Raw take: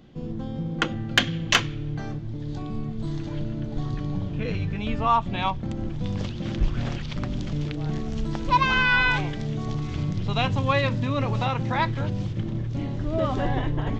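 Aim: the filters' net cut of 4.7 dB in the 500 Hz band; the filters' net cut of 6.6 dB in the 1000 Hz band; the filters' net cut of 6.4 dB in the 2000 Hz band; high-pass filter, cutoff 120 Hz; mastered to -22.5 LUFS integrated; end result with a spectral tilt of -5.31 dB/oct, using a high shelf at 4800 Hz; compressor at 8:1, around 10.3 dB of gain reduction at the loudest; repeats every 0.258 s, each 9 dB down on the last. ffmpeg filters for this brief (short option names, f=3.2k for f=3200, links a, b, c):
-af "highpass=120,equalizer=f=500:t=o:g=-4,equalizer=f=1k:t=o:g=-5,equalizer=f=2k:t=o:g=-7.5,highshelf=f=4.8k:g=3.5,acompressor=threshold=-28dB:ratio=8,aecho=1:1:258|516|774|1032:0.355|0.124|0.0435|0.0152,volume=10.5dB"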